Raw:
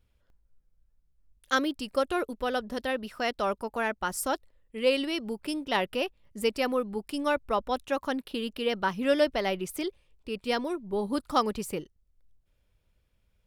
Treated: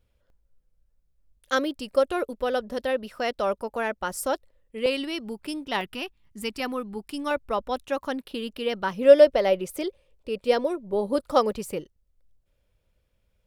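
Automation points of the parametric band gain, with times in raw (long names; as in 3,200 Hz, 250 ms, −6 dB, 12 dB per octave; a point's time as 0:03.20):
parametric band 540 Hz 0.51 octaves
+6.5 dB
from 0:04.86 −2.5 dB
from 0:05.81 −14 dB
from 0:06.60 −5.5 dB
from 0:07.31 +2 dB
from 0:08.92 +13.5 dB
from 0:11.52 +6 dB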